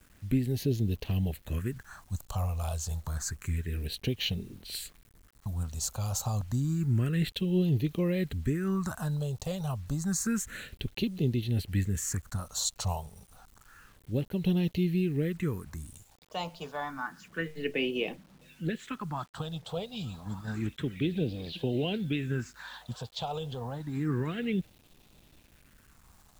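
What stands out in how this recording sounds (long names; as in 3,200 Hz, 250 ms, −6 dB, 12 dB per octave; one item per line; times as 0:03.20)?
phaser sweep stages 4, 0.29 Hz, lowest notch 300–1,400 Hz
a quantiser's noise floor 10 bits, dither none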